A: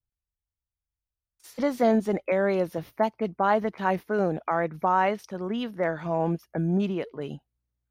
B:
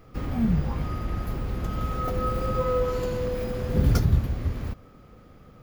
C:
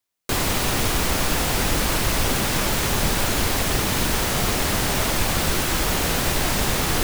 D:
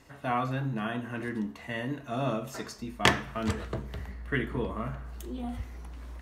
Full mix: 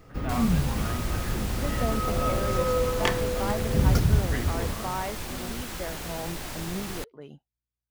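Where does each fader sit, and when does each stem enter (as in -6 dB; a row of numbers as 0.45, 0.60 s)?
-10.0, -0.5, -14.5, -4.5 dB; 0.00, 0.00, 0.00, 0.00 s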